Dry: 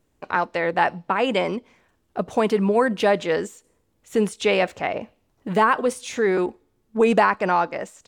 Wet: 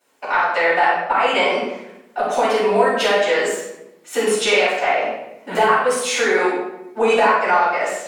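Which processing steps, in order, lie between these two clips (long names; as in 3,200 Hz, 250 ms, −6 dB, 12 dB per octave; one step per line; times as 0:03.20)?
high-pass filter 660 Hz 12 dB per octave
downward compressor 5 to 1, threshold −29 dBFS, peak gain reduction 13.5 dB
rectangular room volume 310 cubic metres, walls mixed, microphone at 7.1 metres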